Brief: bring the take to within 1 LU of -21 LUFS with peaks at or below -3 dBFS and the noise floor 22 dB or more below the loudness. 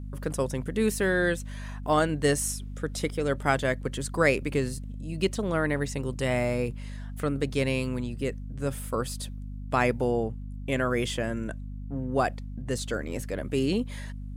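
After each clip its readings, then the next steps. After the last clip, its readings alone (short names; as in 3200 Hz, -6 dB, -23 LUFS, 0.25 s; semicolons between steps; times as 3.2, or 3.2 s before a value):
hum 50 Hz; harmonics up to 250 Hz; hum level -34 dBFS; loudness -29.0 LUFS; peak -9.0 dBFS; loudness target -21.0 LUFS
-> notches 50/100/150/200/250 Hz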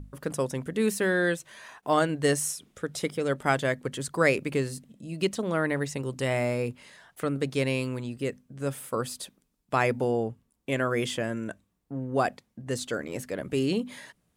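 hum none; loudness -29.0 LUFS; peak -9.0 dBFS; loudness target -21.0 LUFS
-> gain +8 dB; limiter -3 dBFS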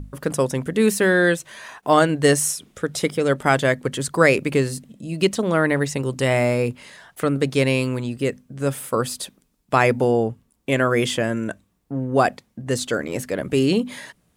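loudness -21.0 LUFS; peak -3.0 dBFS; noise floor -66 dBFS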